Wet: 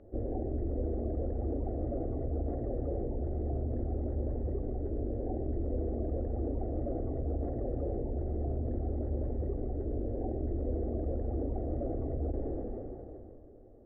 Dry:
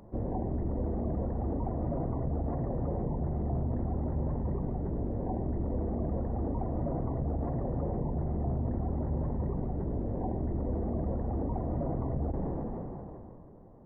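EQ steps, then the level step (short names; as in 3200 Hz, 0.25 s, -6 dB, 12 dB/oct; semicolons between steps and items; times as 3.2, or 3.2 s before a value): LPF 1500 Hz 12 dB/oct; fixed phaser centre 410 Hz, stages 4; +1.5 dB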